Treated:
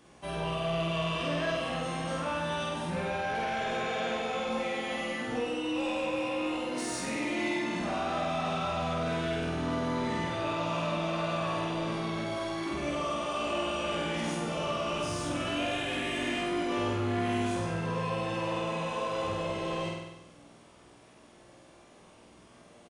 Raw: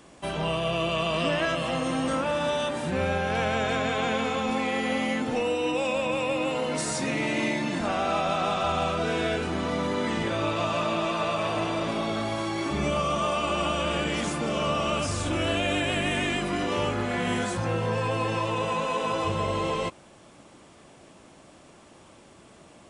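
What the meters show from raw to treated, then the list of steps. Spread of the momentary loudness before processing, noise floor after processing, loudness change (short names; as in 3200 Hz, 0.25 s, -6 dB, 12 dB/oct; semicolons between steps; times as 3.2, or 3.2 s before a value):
2 LU, -56 dBFS, -5.0 dB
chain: flutter echo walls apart 8.3 m, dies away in 0.99 s; soft clip -17 dBFS, distortion -18 dB; notch 7600 Hz, Q 8.8; doubler 17 ms -5 dB; gain -8 dB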